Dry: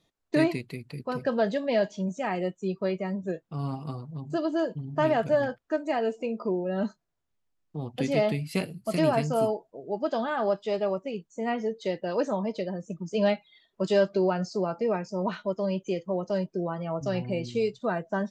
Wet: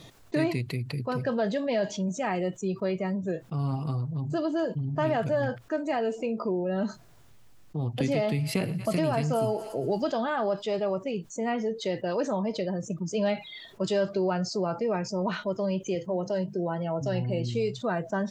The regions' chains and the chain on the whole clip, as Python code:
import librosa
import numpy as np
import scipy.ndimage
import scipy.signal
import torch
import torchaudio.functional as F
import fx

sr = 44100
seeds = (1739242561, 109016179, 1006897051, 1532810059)

y = fx.chain(x, sr, fx.echo_thinned(ms=116, feedback_pct=53, hz=680.0, wet_db=-22.0),
    fx.band_squash(depth_pct=100), at=(8.0, 10.12))
y = fx.chain(y, sr, fx.hum_notches(base_hz=50, count=4),
    fx.notch_comb(f0_hz=1200.0), at=(15.95, 17.53))
y = fx.peak_eq(y, sr, hz=120.0, db=10.0, octaves=0.34)
y = fx.env_flatten(y, sr, amount_pct=50)
y = y * librosa.db_to_amplitude(-4.5)